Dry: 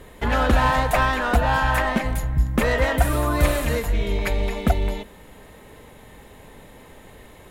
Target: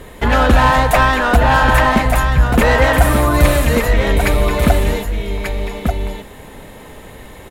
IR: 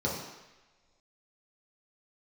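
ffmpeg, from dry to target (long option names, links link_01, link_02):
-af "aecho=1:1:1188:0.473,acontrast=73,volume=1.5dB"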